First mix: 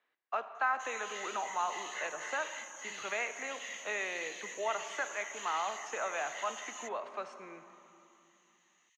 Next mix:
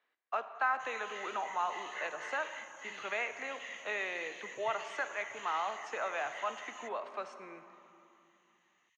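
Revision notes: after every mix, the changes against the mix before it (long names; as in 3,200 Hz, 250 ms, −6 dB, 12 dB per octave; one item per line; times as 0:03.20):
background: add bass and treble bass +15 dB, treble −12 dB
master: add low-shelf EQ 69 Hz −11.5 dB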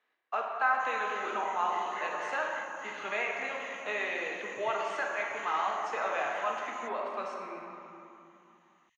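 speech: send +11.5 dB
master: add low-shelf EQ 69 Hz +11.5 dB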